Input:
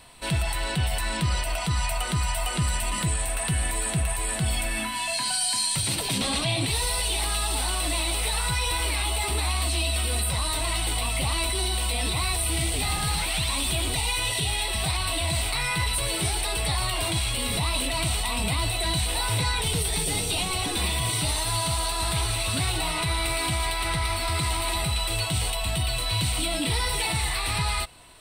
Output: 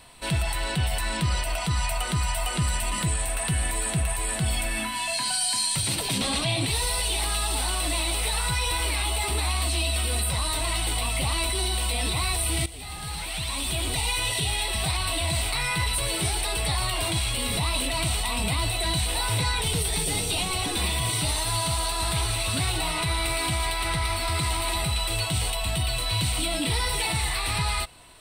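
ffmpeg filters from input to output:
-filter_complex "[0:a]asplit=2[a][b];[a]atrim=end=12.66,asetpts=PTS-STARTPTS,afade=t=out:st=12.656:d=0.004:c=hsin:silence=0.158489[c];[b]atrim=start=12.66,asetpts=PTS-STARTPTS,afade=t=in:d=1.39:silence=0.158489[d];[c][d]concat=n=2:v=0:a=1"

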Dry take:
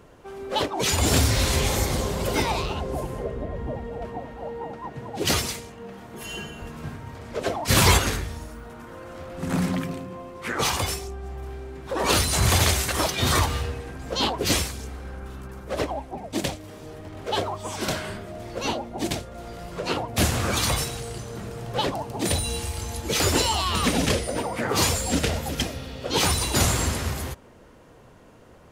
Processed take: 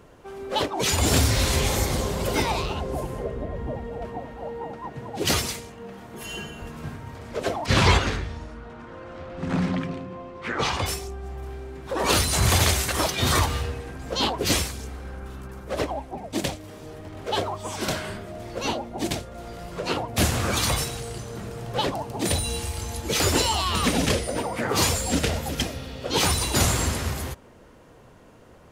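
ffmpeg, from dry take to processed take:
-filter_complex "[0:a]asettb=1/sr,asplit=3[a][b][c];[a]atrim=end=7.664[d];[b]atrim=start=7.66:end=10.86,asetpts=PTS-STARTPTS,afade=t=in:d=0.004:c=qsin,afade=t=out:st=3.196:d=0.004:c=qsin,lowpass=4.4k[e];[c]atrim=start=10.856[f];[d][e]acrossfade=d=0.004:c1=hsin:c2=qsin[g];[g][f]acrossfade=d=0.004:c1=qsin:c2=hsin"

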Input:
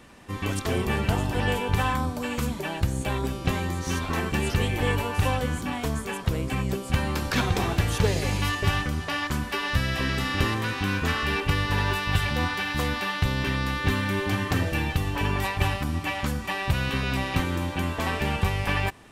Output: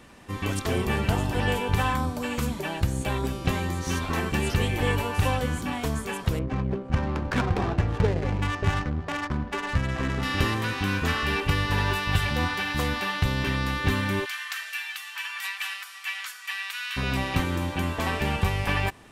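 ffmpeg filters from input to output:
-filter_complex "[0:a]asettb=1/sr,asplit=3[a][b][c];[a]atrim=end=6.394[d];[b]atrim=start=6.39:end=10.23,asetpts=PTS-STARTPTS,afade=t=in:d=0.004:c=qsin,afade=t=out:st=3.836:d=0.004:c=qsin,adynamicsmooth=sensitivity=2:basefreq=530[e];[c]atrim=start=10.226[f];[d][e]acrossfade=d=0.004:c1=hsin:c2=qsin[g];[g][f]acrossfade=d=0.004:c1=qsin:c2=hsin,asplit=3[h][i][j];[h]afade=t=out:st=14.24:d=0.02[k];[i]highpass=f=1.4k:w=0.5412,highpass=f=1.4k:w=1.3066,afade=t=in:st=14.24:d=0.02,afade=t=out:st=16.96:d=0.02[l];[j]afade=t=in:st=16.96:d=0.02[m];[k][l][m]amix=inputs=3:normalize=0"

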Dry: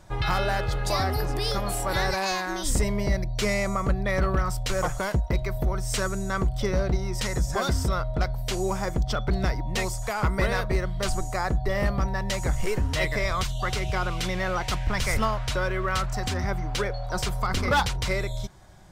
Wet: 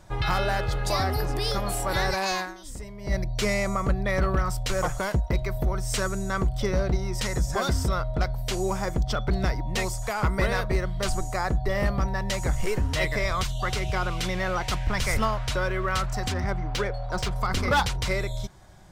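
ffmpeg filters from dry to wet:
-filter_complex "[0:a]asettb=1/sr,asplit=3[a][b][c];[a]atrim=end=16.324[d];[b]atrim=start=16.32:end=17.36,asetpts=PTS-STARTPTS,afade=t=in:d=0.004:c=qsin,afade=t=out:st=1.036:d=0.004:c=qsin,adynamicsmooth=sensitivity=7:basefreq=3.7k[e];[c]atrim=start=17.356[f];[d][e]acrossfade=d=0.004:c1=hsin:c2=qsin[g];[g][f]acrossfade=d=0.004:c1=qsin:c2=hsin,asplit=3[h][i][j];[h]atrim=end=2.58,asetpts=PTS-STARTPTS,afade=t=out:st=2.42:d=0.16:c=qua:silence=0.188365[k];[i]atrim=start=2.58:end=2.98,asetpts=PTS-STARTPTS,volume=-14.5dB[l];[j]atrim=start=2.98,asetpts=PTS-STARTPTS,afade=t=in:d=0.16:c=qua:silence=0.188365[m];[k][l][m]concat=n=3:v=0:a=1"

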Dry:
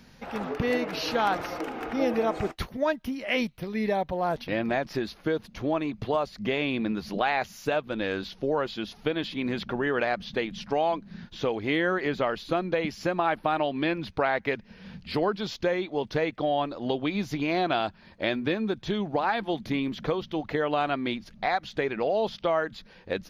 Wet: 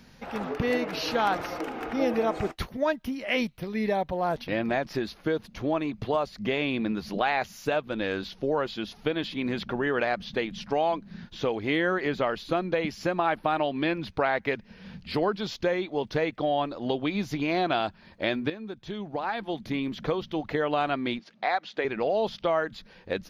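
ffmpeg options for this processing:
-filter_complex "[0:a]asettb=1/sr,asplit=3[a][b][c];[a]atrim=end=21.194[d];[b]atrim=start=21.19:end=21.85,asetpts=PTS-STARTPTS,afade=t=in:d=0.004:c=qsin,afade=t=out:st=0.656:d=0.004:c=qsin,highpass=330,lowpass=5.1k[e];[c]atrim=start=21.846[f];[d][e]acrossfade=d=0.004:c1=hsin:c2=qsin[g];[g][f]acrossfade=d=0.004:c1=qsin:c2=hsin,asplit=2[h][i];[h]atrim=end=18.5,asetpts=PTS-STARTPTS,afade=t=out:st=18.496:d=0.004:c=hsin:silence=0.251189[j];[i]atrim=start=18.5,asetpts=PTS-STARTPTS,afade=t=in:d=1.65:silence=0.251189[k];[j][k]concat=n=2:v=0:a=1"

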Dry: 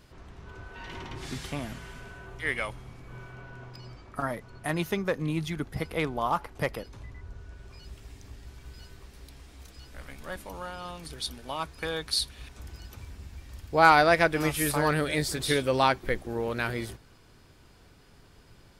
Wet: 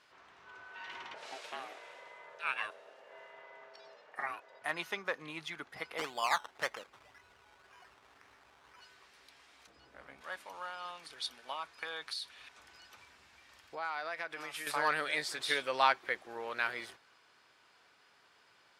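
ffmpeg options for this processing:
-filter_complex "[0:a]asettb=1/sr,asplit=3[a][b][c];[a]atrim=end=1.144[d];[b]atrim=start=1.14:end=4.62,asetpts=PTS-STARTPTS,afade=t=in:d=0.004:c=qsin,afade=t=out:st=3.476:d=0.004:c=qsin,aeval=exprs='val(0)*sin(2*PI*530*n/s)':c=same[e];[c]atrim=start=4.616[f];[d][e]acrossfade=d=0.004:c1=hsin:c2=qsin[g];[g][f]acrossfade=d=0.004:c1=qsin:c2=hsin,asplit=3[h][i][j];[h]afade=t=out:st=5.97:d=0.02[k];[i]acrusher=samples=15:mix=1:aa=0.000001:lfo=1:lforange=9:lforate=1.9,afade=t=in:st=5.97:d=0.02,afade=t=out:st=8.8:d=0.02[l];[j]afade=t=in:st=8.8:d=0.02[m];[k][l][m]amix=inputs=3:normalize=0,asettb=1/sr,asplit=3[n][o][p];[n]atrim=end=9.674[q];[o]atrim=start=9.67:end=10.21,asetpts=PTS-STARTPTS,afade=t=in:d=0.004:c=qsin,afade=t=out:st=0.536:d=0.004:c=qsin,tiltshelf=f=970:g=9.5[r];[p]atrim=start=10.206[s];[q][r]acrossfade=d=0.004:c1=hsin:c2=qsin[t];[t][s]acrossfade=d=0.004:c1=qsin:c2=hsin,asettb=1/sr,asplit=3[u][v][w];[u]atrim=end=11.524[x];[v]atrim=start=11.52:end=14.67,asetpts=PTS-STARTPTS,afade=t=in:d=0.004:c=qsin,afade=t=out:st=3.146:d=0.004:c=qsin,acompressor=threshold=-30dB:ratio=10:attack=3.2:release=140:knee=1:detection=peak[y];[w]atrim=start=14.666[z];[x][y]acrossfade=d=0.004:c1=hsin:c2=qsin[aa];[aa][z]acrossfade=d=0.004:c1=qsin:c2=hsin,highpass=1k,aemphasis=mode=reproduction:type=bsi"

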